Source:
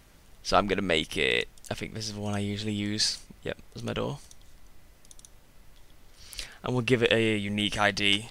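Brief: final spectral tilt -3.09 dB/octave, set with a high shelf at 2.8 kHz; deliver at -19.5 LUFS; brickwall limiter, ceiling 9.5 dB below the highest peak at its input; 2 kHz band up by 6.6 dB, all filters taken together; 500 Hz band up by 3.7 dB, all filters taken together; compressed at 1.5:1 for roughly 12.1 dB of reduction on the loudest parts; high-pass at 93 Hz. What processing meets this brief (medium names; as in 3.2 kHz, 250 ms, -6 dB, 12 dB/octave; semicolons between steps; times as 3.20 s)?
high-pass 93 Hz; peaking EQ 500 Hz +4 dB; peaking EQ 2 kHz +5 dB; treble shelf 2.8 kHz +6.5 dB; compression 1.5:1, threshold -48 dBFS; trim +17.5 dB; peak limiter -5 dBFS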